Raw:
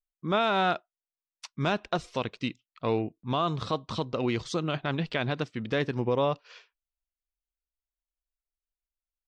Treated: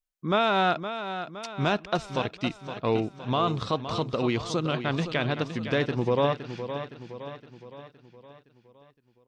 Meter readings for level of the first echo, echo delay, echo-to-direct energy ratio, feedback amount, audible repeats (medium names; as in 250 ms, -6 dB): -10.0 dB, 515 ms, -8.5 dB, 52%, 5